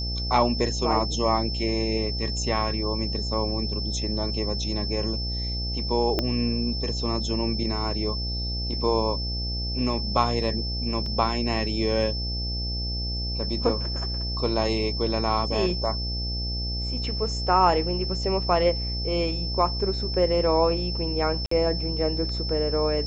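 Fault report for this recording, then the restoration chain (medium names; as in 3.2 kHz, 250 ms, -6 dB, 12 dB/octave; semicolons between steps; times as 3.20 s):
buzz 60 Hz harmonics 14 -30 dBFS
whine 5.3 kHz -31 dBFS
6.19 s: pop -10 dBFS
11.06 s: dropout 2.7 ms
21.46–21.51 s: dropout 54 ms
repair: de-click; band-stop 5.3 kHz, Q 30; de-hum 60 Hz, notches 14; interpolate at 11.06 s, 2.7 ms; interpolate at 21.46 s, 54 ms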